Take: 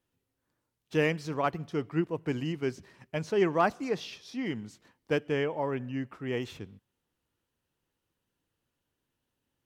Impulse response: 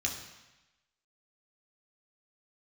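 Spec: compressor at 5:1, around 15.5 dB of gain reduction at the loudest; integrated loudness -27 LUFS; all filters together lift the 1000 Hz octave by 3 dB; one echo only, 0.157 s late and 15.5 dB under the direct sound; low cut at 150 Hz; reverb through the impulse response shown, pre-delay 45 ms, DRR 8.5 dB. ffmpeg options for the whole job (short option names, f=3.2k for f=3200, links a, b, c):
-filter_complex "[0:a]highpass=150,equalizer=f=1k:t=o:g=4,acompressor=threshold=-35dB:ratio=5,aecho=1:1:157:0.168,asplit=2[a][b];[1:a]atrim=start_sample=2205,adelay=45[c];[b][c]afir=irnorm=-1:irlink=0,volume=-13dB[d];[a][d]amix=inputs=2:normalize=0,volume=13dB"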